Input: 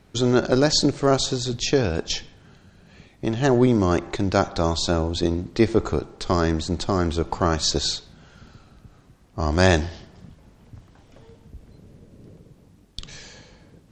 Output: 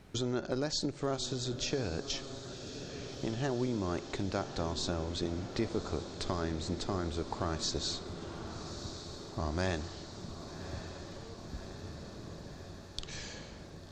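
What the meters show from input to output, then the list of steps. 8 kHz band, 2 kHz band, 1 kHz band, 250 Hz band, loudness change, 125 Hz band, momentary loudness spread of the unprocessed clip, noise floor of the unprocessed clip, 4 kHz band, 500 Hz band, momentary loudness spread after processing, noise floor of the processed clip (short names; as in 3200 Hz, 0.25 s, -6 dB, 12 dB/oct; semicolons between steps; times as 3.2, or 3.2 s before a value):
-11.5 dB, -14.0 dB, -13.5 dB, -13.5 dB, -15.5 dB, -12.5 dB, 13 LU, -54 dBFS, -11.5 dB, -14.0 dB, 12 LU, -49 dBFS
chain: compressor 2.5:1, threshold -36 dBFS, peak gain reduction 16 dB; diffused feedback echo 1.151 s, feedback 71%, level -10.5 dB; gain -1.5 dB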